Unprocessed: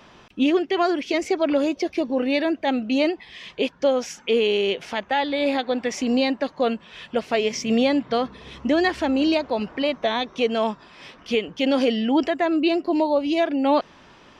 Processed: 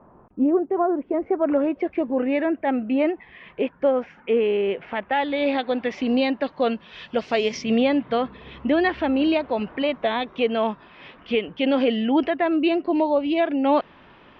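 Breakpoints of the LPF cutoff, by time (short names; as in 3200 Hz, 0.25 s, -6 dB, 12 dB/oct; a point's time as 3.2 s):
LPF 24 dB/oct
1.05 s 1100 Hz
1.75 s 2200 Hz
4.75 s 2200 Hz
5.49 s 3700 Hz
6.38 s 3700 Hz
7.44 s 6600 Hz
7.81 s 3300 Hz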